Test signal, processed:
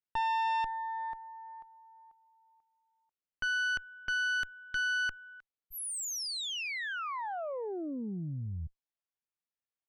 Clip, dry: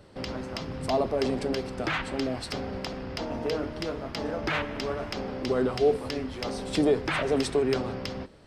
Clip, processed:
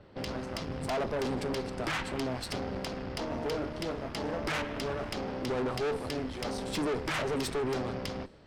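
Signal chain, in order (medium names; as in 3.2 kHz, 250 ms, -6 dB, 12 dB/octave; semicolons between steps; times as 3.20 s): valve stage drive 31 dB, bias 0.75; level-controlled noise filter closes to 2.9 kHz, open at -36 dBFS; trim +2.5 dB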